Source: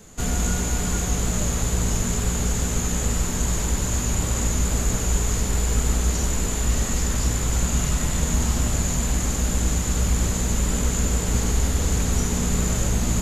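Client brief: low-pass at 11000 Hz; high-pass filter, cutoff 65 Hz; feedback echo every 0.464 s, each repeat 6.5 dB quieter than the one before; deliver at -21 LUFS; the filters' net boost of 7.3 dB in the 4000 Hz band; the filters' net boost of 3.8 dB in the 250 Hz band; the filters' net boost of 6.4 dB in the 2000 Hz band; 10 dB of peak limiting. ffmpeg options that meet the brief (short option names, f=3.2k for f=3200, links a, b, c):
-af "highpass=65,lowpass=11k,equalizer=f=250:t=o:g=5,equalizer=f=2k:t=o:g=6,equalizer=f=4k:t=o:g=7.5,alimiter=limit=-19.5dB:level=0:latency=1,aecho=1:1:464|928|1392|1856|2320|2784:0.473|0.222|0.105|0.0491|0.0231|0.0109,volume=6dB"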